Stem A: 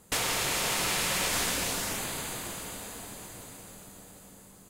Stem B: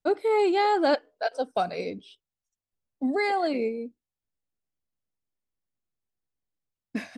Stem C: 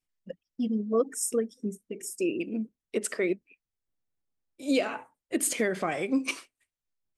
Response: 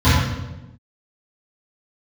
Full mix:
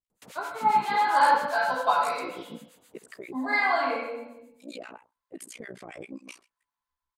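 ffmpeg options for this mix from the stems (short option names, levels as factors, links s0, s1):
-filter_complex "[0:a]highpass=130,adelay=100,volume=0.158[s0];[1:a]dynaudnorm=f=130:g=11:m=2.24,highpass=f=1000:t=q:w=3.7,adelay=300,volume=0.282,asplit=2[s1][s2];[s2]volume=0.158[s3];[2:a]tremolo=f=60:d=0.974,volume=0.841,asplit=2[s4][s5];[s5]apad=whole_len=329450[s6];[s1][s6]sidechaincompress=threshold=0.0178:ratio=8:attack=16:release=783[s7];[s0][s4]amix=inputs=2:normalize=0,acrossover=split=1000[s8][s9];[s8]aeval=exprs='val(0)*(1-1/2+1/2*cos(2*PI*7.5*n/s))':c=same[s10];[s9]aeval=exprs='val(0)*(1-1/2-1/2*cos(2*PI*7.5*n/s))':c=same[s11];[s10][s11]amix=inputs=2:normalize=0,alimiter=level_in=2.11:limit=0.0631:level=0:latency=1:release=36,volume=0.473,volume=1[s12];[3:a]atrim=start_sample=2205[s13];[s3][s13]afir=irnorm=-1:irlink=0[s14];[s7][s12][s14]amix=inputs=3:normalize=0"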